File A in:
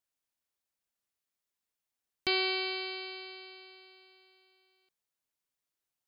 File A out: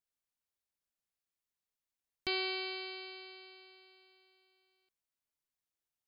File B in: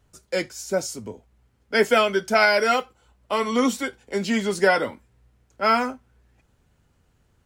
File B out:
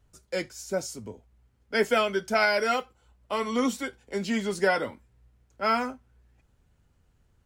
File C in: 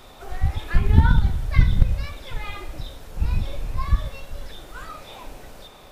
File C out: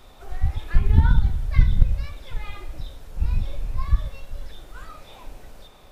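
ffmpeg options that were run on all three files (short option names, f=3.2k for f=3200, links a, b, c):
-af "lowshelf=f=86:g=7.5,volume=-5.5dB"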